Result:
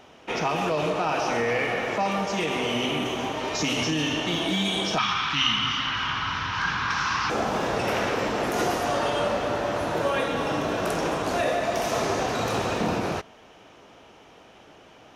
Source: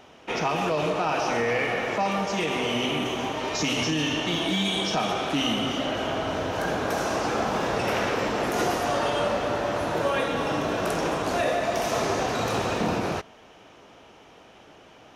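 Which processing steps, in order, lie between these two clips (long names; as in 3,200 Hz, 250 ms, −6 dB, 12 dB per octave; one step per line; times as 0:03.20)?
0:04.98–0:07.30: drawn EQ curve 140 Hz 0 dB, 640 Hz −24 dB, 1,000 Hz +7 dB, 5,400 Hz +5 dB, 11,000 Hz −29 dB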